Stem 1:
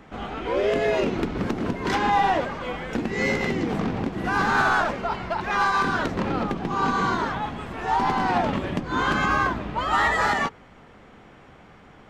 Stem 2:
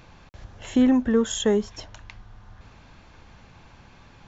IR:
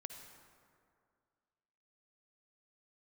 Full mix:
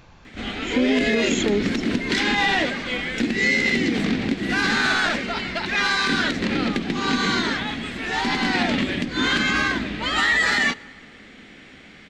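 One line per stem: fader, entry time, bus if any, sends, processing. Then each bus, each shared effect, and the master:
-2.5 dB, 0.25 s, send -13.5 dB, ten-band EQ 125 Hz -3 dB, 250 Hz +9 dB, 1000 Hz -8 dB, 2000 Hz +11 dB, 4000 Hz +12 dB, 8000 Hz +9 dB
+0.5 dB, 0.00 s, no send, dry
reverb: on, RT60 2.2 s, pre-delay 48 ms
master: limiter -11 dBFS, peak gain reduction 6.5 dB

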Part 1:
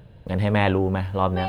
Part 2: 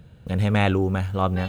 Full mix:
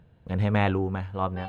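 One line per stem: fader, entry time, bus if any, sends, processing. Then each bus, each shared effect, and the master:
-7.5 dB, 0.00 s, no send, low shelf 340 Hz -12 dB
-0.5 dB, 0.00 s, no send, upward expander 1.5:1, over -34 dBFS; auto duck -11 dB, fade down 1.90 s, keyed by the first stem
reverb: off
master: high shelf 3000 Hz -12 dB; notch 570 Hz, Q 15

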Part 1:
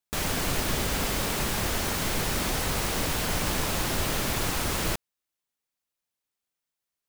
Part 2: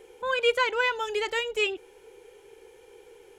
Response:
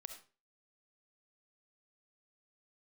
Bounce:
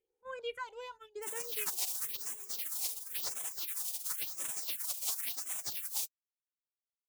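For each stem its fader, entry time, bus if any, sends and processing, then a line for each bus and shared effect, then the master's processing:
+2.0 dB, 1.10 s, no send, spectral gate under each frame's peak -25 dB weak
-15.0 dB, 0.00 s, no send, dry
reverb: off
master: gate -44 dBFS, range -20 dB; phaser stages 4, 0.95 Hz, lowest notch 250–4500 Hz

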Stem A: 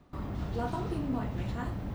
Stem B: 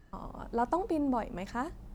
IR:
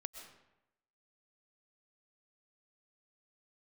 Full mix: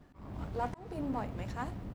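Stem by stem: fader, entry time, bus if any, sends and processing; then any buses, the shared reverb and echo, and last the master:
-0.5 dB, 0.00 s, send -7 dB, running maximum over 17 samples; auto duck -12 dB, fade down 0.50 s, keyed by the second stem
-4.0 dB, 15 ms, no send, low shelf 370 Hz -10.5 dB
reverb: on, RT60 0.90 s, pre-delay 85 ms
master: auto swell 0.287 s

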